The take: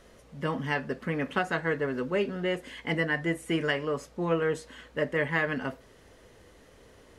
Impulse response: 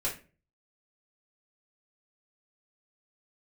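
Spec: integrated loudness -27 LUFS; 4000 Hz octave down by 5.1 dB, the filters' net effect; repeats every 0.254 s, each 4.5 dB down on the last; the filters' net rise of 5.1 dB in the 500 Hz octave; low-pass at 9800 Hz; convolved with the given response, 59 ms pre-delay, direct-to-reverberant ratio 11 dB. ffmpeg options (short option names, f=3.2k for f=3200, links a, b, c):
-filter_complex "[0:a]lowpass=9.8k,equalizer=f=500:t=o:g=6,equalizer=f=4k:t=o:g=-9,aecho=1:1:254|508|762|1016|1270|1524|1778|2032|2286:0.596|0.357|0.214|0.129|0.0772|0.0463|0.0278|0.0167|0.01,asplit=2[a][b];[1:a]atrim=start_sample=2205,adelay=59[c];[b][c]afir=irnorm=-1:irlink=0,volume=-16.5dB[d];[a][d]amix=inputs=2:normalize=0,volume=-2dB"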